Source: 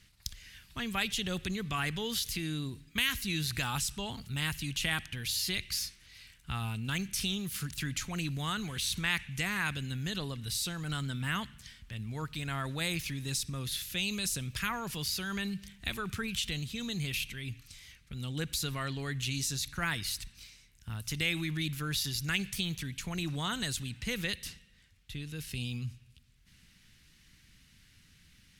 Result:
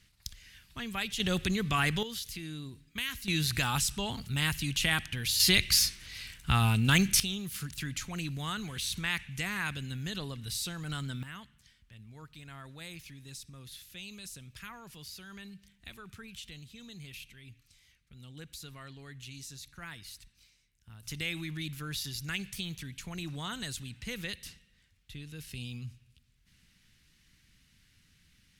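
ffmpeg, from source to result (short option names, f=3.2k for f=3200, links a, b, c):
-af "asetnsamples=n=441:p=0,asendcmd='1.2 volume volume 5dB;2.03 volume volume -5.5dB;3.28 volume volume 3.5dB;5.4 volume volume 10dB;7.2 volume volume -1.5dB;11.23 volume volume -12dB;21.03 volume volume -4dB',volume=-2.5dB"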